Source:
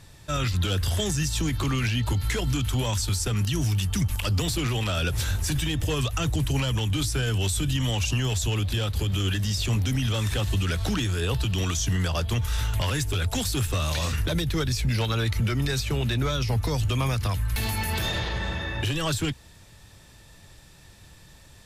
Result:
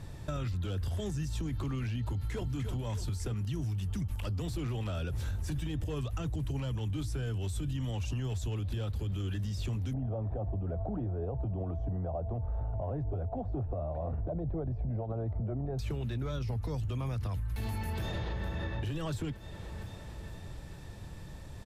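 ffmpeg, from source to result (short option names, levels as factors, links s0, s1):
-filter_complex "[0:a]asplit=2[s0][s1];[s1]afade=t=in:st=2.05:d=0.01,afade=t=out:st=2.51:d=0.01,aecho=0:1:300|600|900|1200|1500|1800:0.421697|0.210848|0.105424|0.0527121|0.026356|0.013178[s2];[s0][s2]amix=inputs=2:normalize=0,asettb=1/sr,asplit=3[s3][s4][s5];[s3]atrim=end=9.934[s6];[s4]atrim=start=9.93:end=15.79,asetpts=PTS-STARTPTS,afade=t=in:d=0.004:c=qsin,afade=t=out:st=5.856:d=0.004:c=qsin,lowpass=f=690:t=q:w=6.1[s7];[s5]atrim=start=15.786[s8];[s6][s7]acrossfade=d=0.004:c1=hsin:c2=qsin[s9];[s9][s8]acrossfade=d=0.004:c1=qsin:c2=hsin,asplit=2[s10][s11];[s11]afade=t=in:st=17.92:d=0.01,afade=t=out:st=18.45:d=0.01,aecho=0:1:460|920|1380|1840|2300|2760|3220:0.281838|0.169103|0.101462|0.0608771|0.0365262|0.0219157|0.0131494[s12];[s10][s12]amix=inputs=2:normalize=0,tiltshelf=f=1300:g=6.5,alimiter=limit=0.0794:level=0:latency=1:release=384,acompressor=threshold=0.02:ratio=2.5"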